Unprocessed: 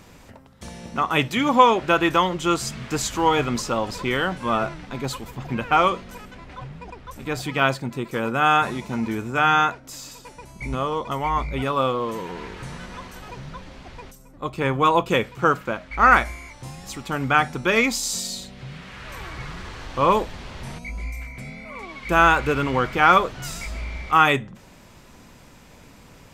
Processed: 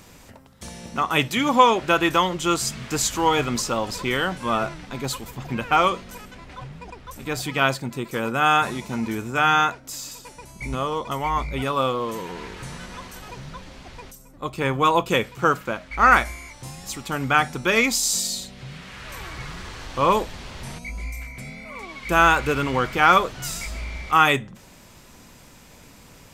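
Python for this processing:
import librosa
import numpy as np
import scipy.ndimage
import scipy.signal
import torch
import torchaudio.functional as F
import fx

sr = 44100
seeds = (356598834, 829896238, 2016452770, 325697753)

y = fx.high_shelf(x, sr, hz=4400.0, db=7.5)
y = F.gain(torch.from_numpy(y), -1.0).numpy()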